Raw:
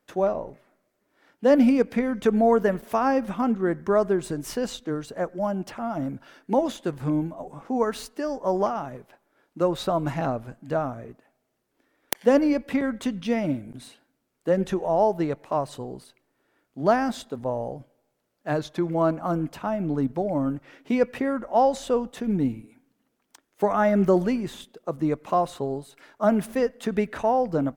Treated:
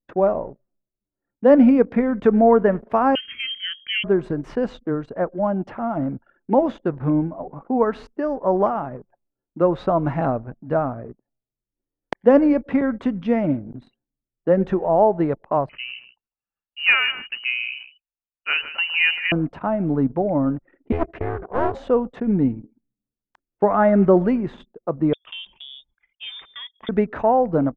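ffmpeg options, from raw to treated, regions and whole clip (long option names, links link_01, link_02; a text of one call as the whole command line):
ffmpeg -i in.wav -filter_complex "[0:a]asettb=1/sr,asplit=3[link_01][link_02][link_03];[link_01]atrim=end=3.154[link_04];[link_02]atrim=start=3.15:end=4.04,asetpts=PTS-STARTPTS,afade=type=in:duration=0.004:curve=qsin,afade=type=out:start_time=0.886:duration=0.004:curve=qsin,aemphasis=mode=production:type=50fm,lowpass=frequency=2900:width_type=q:width=0.5098,lowpass=frequency=2900:width_type=q:width=0.6013,lowpass=frequency=2900:width_type=q:width=0.9,lowpass=frequency=2900:width_type=q:width=2.563,afreqshift=-3400,asuperstop=centerf=760:order=4:qfactor=0.59[link_05];[link_03]atrim=start=4.036[link_06];[link_04][link_05]acrossfade=duration=0.004:curve1=hsin:curve2=qsin[link_07];[link_07][link_06]acrossfade=duration=0.004:curve1=qsin:curve2=hsin,asettb=1/sr,asplit=3[link_08][link_09][link_10];[link_08]atrim=end=15.694[link_11];[link_09]atrim=start=15.69:end=19.32,asetpts=PTS-STARTPTS,afade=type=in:duration=0.004:curve=qsin,afade=type=out:start_time=3.626:duration=0.004:curve=qsin,acontrast=36,aecho=1:1:154:0.211,atrim=end_sample=160083,lowpass=frequency=2600:width_type=q:width=0.5098,lowpass=frequency=2600:width_type=q:width=0.6013,lowpass=frequency=2600:width_type=q:width=0.9,lowpass=frequency=2600:width_type=q:width=2.563,afreqshift=-3100[link_12];[link_10]atrim=start=19.316[link_13];[link_11][link_12]acrossfade=duration=0.004:curve1=hsin:curve2=qsin[link_14];[link_14][link_13]acrossfade=duration=0.004:curve1=qsin:curve2=hsin,asettb=1/sr,asplit=3[link_15][link_16][link_17];[link_15]atrim=end=20.924[link_18];[link_16]atrim=start=20.92:end=21.75,asetpts=PTS-STARTPTS,afade=type=in:duration=0.004:curve=qsin,afade=type=out:start_time=0.826:duration=0.004:curve=qsin,aeval=exprs='val(0)*sin(2*PI*170*n/s)':channel_layout=same,bandreject=frequency=840:width=7.4,aeval=exprs='clip(val(0),-1,0.02)':channel_layout=same[link_19];[link_17]atrim=start=21.746[link_20];[link_18][link_19]acrossfade=duration=0.004:curve1=hsin:curve2=qsin[link_21];[link_21][link_20]acrossfade=duration=0.004:curve1=qsin:curve2=hsin,asettb=1/sr,asplit=3[link_22][link_23][link_24];[link_22]atrim=end=25.134[link_25];[link_23]atrim=start=25.13:end=26.89,asetpts=PTS-STARTPTS,afade=type=in:duration=0.004:curve=qsin,afade=type=out:start_time=1.756:duration=0.004:curve=qsin,highpass=frequency=190:poles=1,acompressor=threshold=-28dB:ratio=2.5:attack=3.2:release=140:knee=1:detection=peak,lowpass=frequency=3200:width_type=q:width=0.5098,lowpass=frequency=3200:width_type=q:width=0.6013,lowpass=frequency=3200:width_type=q:width=0.9,lowpass=frequency=3200:width_type=q:width=2.563,afreqshift=-3800[link_26];[link_24]atrim=start=26.886[link_27];[link_25][link_26]acrossfade=duration=0.004:curve1=hsin:curve2=qsin[link_28];[link_28][link_27]acrossfade=duration=0.004:curve1=qsin:curve2=hsin,anlmdn=0.1,lowpass=1700,volume=5dB" out.wav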